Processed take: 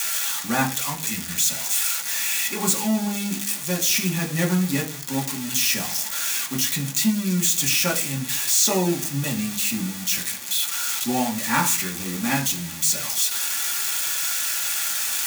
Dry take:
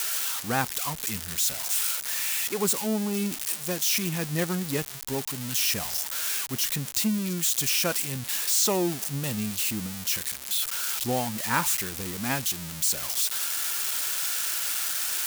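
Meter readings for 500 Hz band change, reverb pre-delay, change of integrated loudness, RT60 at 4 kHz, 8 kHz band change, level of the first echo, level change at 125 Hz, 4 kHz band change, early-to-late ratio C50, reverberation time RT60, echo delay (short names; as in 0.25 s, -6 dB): +1.0 dB, 3 ms, +4.0 dB, 0.50 s, +5.0 dB, none, +5.5 dB, +4.5 dB, 12.5 dB, 0.45 s, none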